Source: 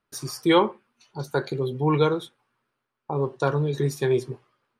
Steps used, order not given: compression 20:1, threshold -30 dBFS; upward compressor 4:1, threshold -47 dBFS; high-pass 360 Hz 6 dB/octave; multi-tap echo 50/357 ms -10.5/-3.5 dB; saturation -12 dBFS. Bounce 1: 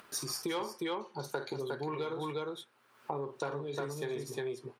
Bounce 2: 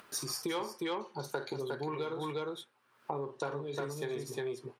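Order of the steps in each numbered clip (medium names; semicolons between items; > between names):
upward compressor > multi-tap echo > saturation > compression > high-pass; saturation > multi-tap echo > compression > upward compressor > high-pass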